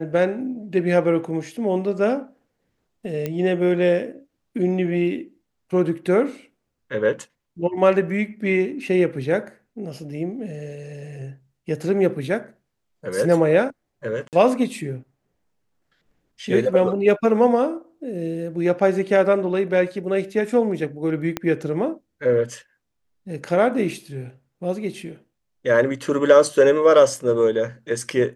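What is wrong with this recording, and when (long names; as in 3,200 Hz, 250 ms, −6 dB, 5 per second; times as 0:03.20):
0:03.26: click −13 dBFS
0:14.28–0:14.33: drop-out 48 ms
0:21.37: click −9 dBFS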